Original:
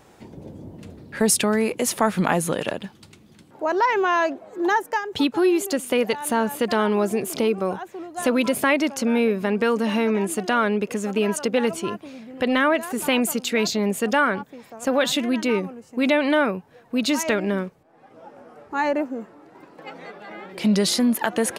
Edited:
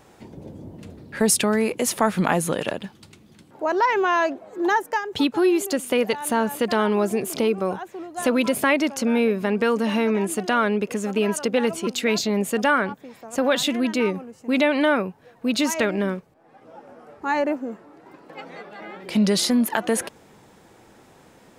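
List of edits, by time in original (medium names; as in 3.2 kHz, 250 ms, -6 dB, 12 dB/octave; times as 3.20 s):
11.87–13.36 s: delete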